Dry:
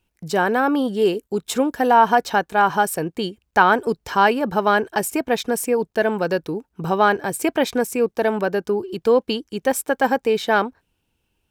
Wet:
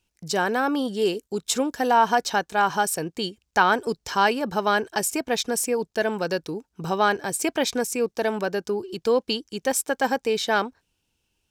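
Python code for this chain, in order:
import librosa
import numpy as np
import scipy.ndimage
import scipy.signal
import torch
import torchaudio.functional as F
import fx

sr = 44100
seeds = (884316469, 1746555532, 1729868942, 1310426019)

y = fx.peak_eq(x, sr, hz=5900.0, db=10.5, octaves=1.6)
y = y * 10.0 ** (-5.0 / 20.0)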